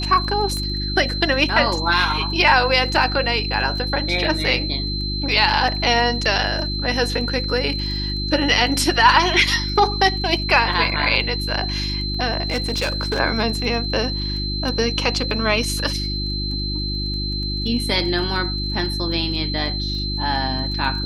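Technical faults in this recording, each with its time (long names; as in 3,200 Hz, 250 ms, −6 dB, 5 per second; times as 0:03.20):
surface crackle 13 per second −30 dBFS
mains hum 50 Hz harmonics 7 −26 dBFS
whistle 4,100 Hz −26 dBFS
0:00.57: click −15 dBFS
0:12.48–0:13.20: clipping −17 dBFS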